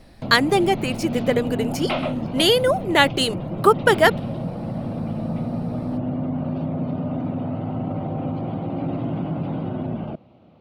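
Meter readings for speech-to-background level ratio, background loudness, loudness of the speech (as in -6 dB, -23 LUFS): 8.0 dB, -27.5 LUFS, -19.5 LUFS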